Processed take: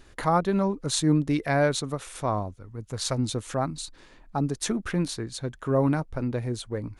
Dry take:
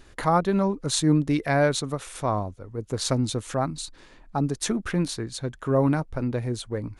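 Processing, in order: 2.56–3.17 bell 650 Hz -> 230 Hz -9 dB 1.2 oct; gain -1.5 dB

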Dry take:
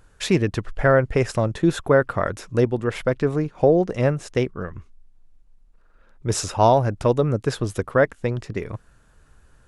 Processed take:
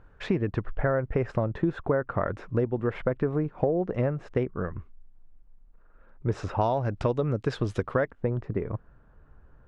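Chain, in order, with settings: LPF 1700 Hz 12 dB/oct, from 6.61 s 4000 Hz, from 8.11 s 1200 Hz; compressor 6:1, threshold -22 dBFS, peak gain reduction 11 dB

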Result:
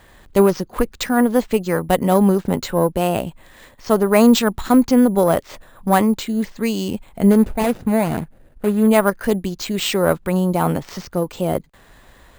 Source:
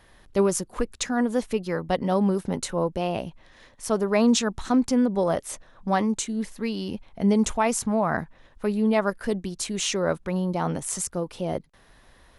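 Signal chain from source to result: 7.31–8.88 median filter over 41 samples; added harmonics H 4 -25 dB, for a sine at -8.5 dBFS; careless resampling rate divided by 4×, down filtered, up hold; gain +7.5 dB

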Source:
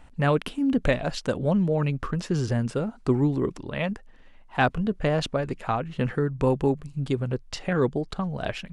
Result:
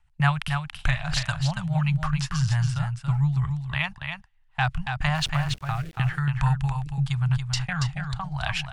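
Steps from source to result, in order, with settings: elliptic band-stop 140–820 Hz, stop band 40 dB; gate -38 dBFS, range -21 dB; in parallel at -1 dB: compressor 6:1, threshold -34 dBFS, peak gain reduction 14 dB; 5.15–5.97 on the sum: sample gate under -41 dBFS; rotary speaker horn 6.7 Hz, later 0.85 Hz, at 2.14; 0.44–1.23 doubler 45 ms -10 dB; on a send: echo 0.281 s -6 dB; on the sum: gain +4 dB

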